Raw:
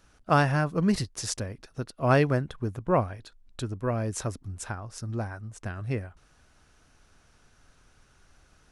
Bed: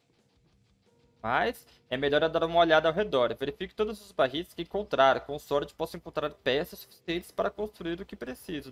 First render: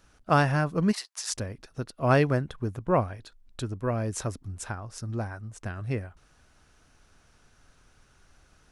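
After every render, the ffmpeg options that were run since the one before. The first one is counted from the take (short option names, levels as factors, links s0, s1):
-filter_complex "[0:a]asplit=3[s0][s1][s2];[s0]afade=t=out:st=0.91:d=0.02[s3];[s1]highpass=f=800:w=0.5412,highpass=f=800:w=1.3066,afade=t=in:st=0.91:d=0.02,afade=t=out:st=1.33:d=0.02[s4];[s2]afade=t=in:st=1.33:d=0.02[s5];[s3][s4][s5]amix=inputs=3:normalize=0"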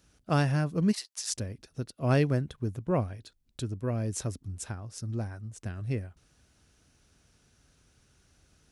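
-af "highpass=53,equalizer=f=1100:w=0.62:g=-9.5"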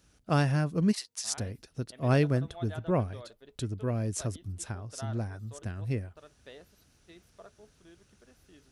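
-filter_complex "[1:a]volume=0.075[s0];[0:a][s0]amix=inputs=2:normalize=0"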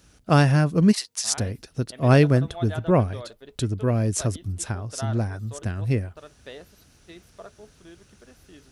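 -af "volume=2.66"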